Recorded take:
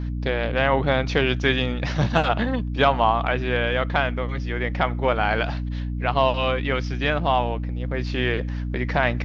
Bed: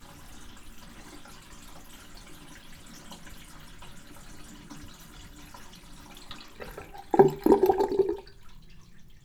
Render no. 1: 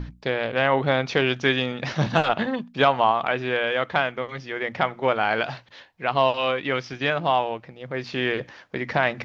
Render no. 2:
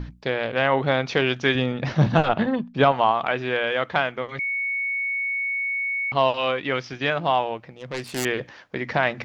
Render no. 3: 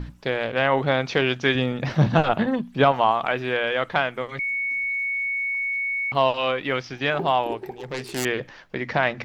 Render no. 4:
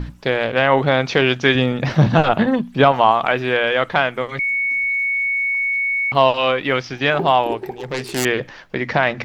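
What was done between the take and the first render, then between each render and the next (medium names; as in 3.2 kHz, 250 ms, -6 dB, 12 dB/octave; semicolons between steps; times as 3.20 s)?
hum notches 60/120/180/240/300 Hz
1.55–2.92 s: tilt EQ -2 dB/octave; 4.39–6.12 s: bleep 2.22 kHz -23 dBFS; 7.74–8.25 s: self-modulated delay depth 0.41 ms
add bed -14.5 dB
trim +6 dB; peak limiter -2 dBFS, peak gain reduction 2.5 dB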